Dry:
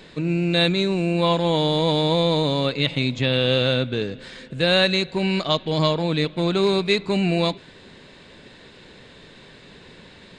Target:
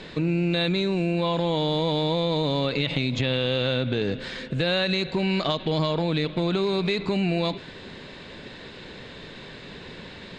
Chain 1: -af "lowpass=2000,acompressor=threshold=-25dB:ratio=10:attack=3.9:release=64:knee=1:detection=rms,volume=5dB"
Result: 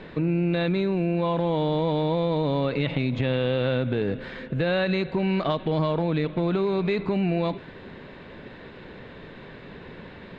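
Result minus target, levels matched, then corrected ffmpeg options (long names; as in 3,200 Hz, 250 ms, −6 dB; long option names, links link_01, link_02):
8,000 Hz band −16.5 dB
-af "lowpass=6000,acompressor=threshold=-25dB:ratio=10:attack=3.9:release=64:knee=1:detection=rms,volume=5dB"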